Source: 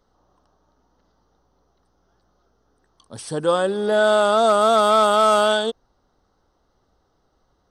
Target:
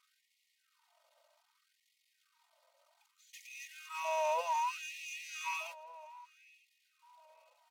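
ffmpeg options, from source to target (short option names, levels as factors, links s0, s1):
-filter_complex "[0:a]aeval=exprs='val(0)+0.5*0.0447*sgn(val(0))':c=same,acompressor=threshold=0.0891:ratio=12,asetrate=33038,aresample=44100,atempo=1.33484,agate=range=0.0126:threshold=0.0631:ratio=16:detection=peak,asuperstop=centerf=1700:order=8:qfactor=7.4,lowshelf=f=230:t=q:w=3:g=-12,aecho=1:1:3.2:0.83,alimiter=limit=0.0794:level=0:latency=1:release=81,asplit=2[s0][s1];[s1]adelay=941,lowpass=f=3100:p=1,volume=0.0944,asplit=2[s2][s3];[s3]adelay=941,lowpass=f=3100:p=1,volume=0.33,asplit=2[s4][s5];[s5]adelay=941,lowpass=f=3100:p=1,volume=0.33[s6];[s0][s2][s4][s6]amix=inputs=4:normalize=0,afftfilt=real='re*gte(b*sr/1024,480*pow(1900/480,0.5+0.5*sin(2*PI*0.64*pts/sr)))':imag='im*gte(b*sr/1024,480*pow(1900/480,0.5+0.5*sin(2*PI*0.64*pts/sr)))':win_size=1024:overlap=0.75"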